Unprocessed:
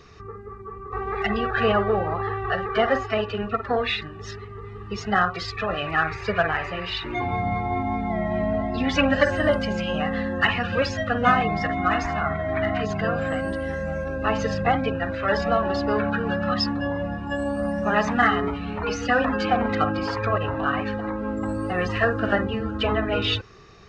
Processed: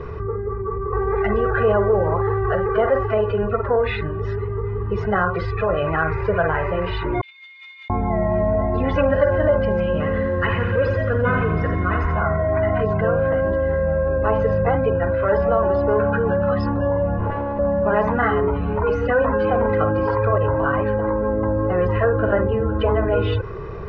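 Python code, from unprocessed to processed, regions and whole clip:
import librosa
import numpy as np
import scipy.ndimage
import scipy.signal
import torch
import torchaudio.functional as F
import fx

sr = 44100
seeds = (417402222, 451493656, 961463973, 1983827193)

y = fx.chain(x, sr, fx.steep_highpass(hz=2900.0, slope=36),
    fx.over_compress(threshold_db=-58.0, ratio=-0.5), at=(7.21, 7.9))
y = fx.chain(y, sr, fx.peak_eq(hz=770.0, db=-12.0, octaves=0.58),
    fx.echo_crushed(ms=87, feedback_pct=55, bits=7, wet_db=-7.0), at=(9.86, 12.16))
y = fx.chain(y, sr, fx.lower_of_two(delay_ms=9.5),
    fx.lowpass(hz=5100.0, slope=12),
    fx.over_compress(threshold_db=-33.0, ratio=-1.0), at=(17.19, 17.59))
y = scipy.signal.sosfilt(scipy.signal.butter(2, 1100.0, 'lowpass', fs=sr, output='sos'), y)
y = y + 0.58 * np.pad(y, (int(2.0 * sr / 1000.0), 0))[:len(y)]
y = fx.env_flatten(y, sr, amount_pct=50)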